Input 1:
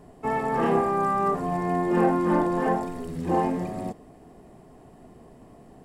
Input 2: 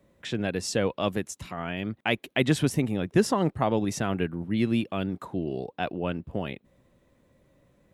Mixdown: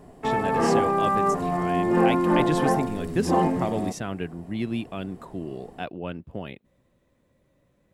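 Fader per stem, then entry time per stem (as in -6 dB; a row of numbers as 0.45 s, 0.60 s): +1.5 dB, -3.5 dB; 0.00 s, 0.00 s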